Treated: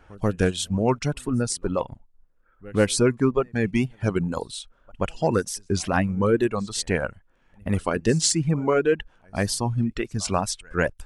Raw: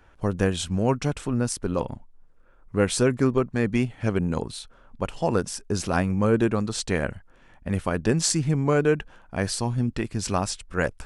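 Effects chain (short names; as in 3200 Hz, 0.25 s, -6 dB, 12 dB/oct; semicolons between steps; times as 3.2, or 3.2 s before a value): in parallel at -9.5 dB: overloaded stage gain 16 dB; on the sum: reverse echo 0.137 s -21.5 dB; reverb removal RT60 1.8 s; wow and flutter 70 cents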